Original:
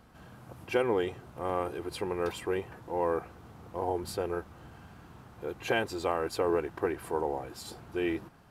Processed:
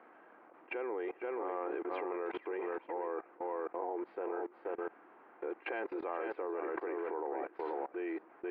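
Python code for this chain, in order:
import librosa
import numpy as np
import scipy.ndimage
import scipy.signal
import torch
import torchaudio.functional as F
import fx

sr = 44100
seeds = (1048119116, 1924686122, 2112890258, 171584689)

p1 = fx.tracing_dist(x, sr, depth_ms=0.05)
p2 = scipy.signal.sosfilt(scipy.signal.ellip(3, 1.0, 50, [320.0, 2200.0], 'bandpass', fs=sr, output='sos'), p1)
p3 = p2 + fx.echo_single(p2, sr, ms=482, db=-8.5, dry=0)
p4 = fx.level_steps(p3, sr, step_db=22)
y = p4 * librosa.db_to_amplitude(6.5)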